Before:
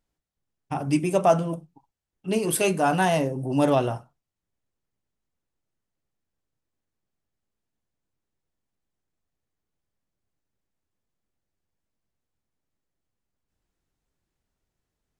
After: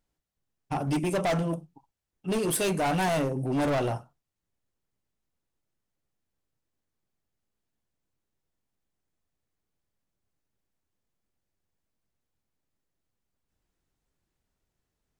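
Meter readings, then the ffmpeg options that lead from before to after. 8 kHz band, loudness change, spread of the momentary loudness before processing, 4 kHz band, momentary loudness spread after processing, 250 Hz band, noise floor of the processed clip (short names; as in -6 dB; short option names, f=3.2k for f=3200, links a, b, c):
-3.0 dB, -4.5 dB, 13 LU, -1.5 dB, 9 LU, -3.5 dB, -84 dBFS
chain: -af "asoftclip=type=hard:threshold=-23.5dB"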